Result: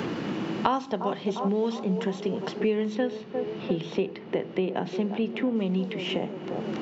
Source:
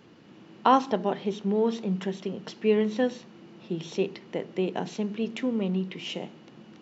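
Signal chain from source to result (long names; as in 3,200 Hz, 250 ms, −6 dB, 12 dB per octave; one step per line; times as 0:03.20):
0:02.95–0:05.56: low-pass filter 3,400 Hz 12 dB per octave
delay with a band-pass on its return 351 ms, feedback 51%, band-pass 600 Hz, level −11 dB
multiband upward and downward compressor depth 100%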